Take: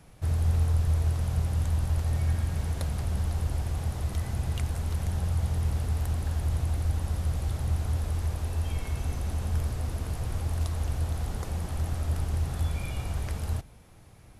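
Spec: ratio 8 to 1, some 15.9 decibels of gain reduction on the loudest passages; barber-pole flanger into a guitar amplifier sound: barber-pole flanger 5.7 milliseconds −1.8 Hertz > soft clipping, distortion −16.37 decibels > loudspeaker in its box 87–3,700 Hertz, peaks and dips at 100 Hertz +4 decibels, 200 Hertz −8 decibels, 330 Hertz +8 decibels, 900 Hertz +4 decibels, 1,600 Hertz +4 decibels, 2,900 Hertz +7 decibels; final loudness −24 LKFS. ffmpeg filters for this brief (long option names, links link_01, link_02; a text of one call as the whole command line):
ffmpeg -i in.wav -filter_complex "[0:a]acompressor=threshold=-38dB:ratio=8,asplit=2[link_01][link_02];[link_02]adelay=5.7,afreqshift=-1.8[link_03];[link_01][link_03]amix=inputs=2:normalize=1,asoftclip=threshold=-39dB,highpass=87,equalizer=frequency=100:width_type=q:width=4:gain=4,equalizer=frequency=200:width_type=q:width=4:gain=-8,equalizer=frequency=330:width_type=q:width=4:gain=8,equalizer=frequency=900:width_type=q:width=4:gain=4,equalizer=frequency=1600:width_type=q:width=4:gain=4,equalizer=frequency=2900:width_type=q:width=4:gain=7,lowpass=frequency=3700:width=0.5412,lowpass=frequency=3700:width=1.3066,volume=26.5dB" out.wav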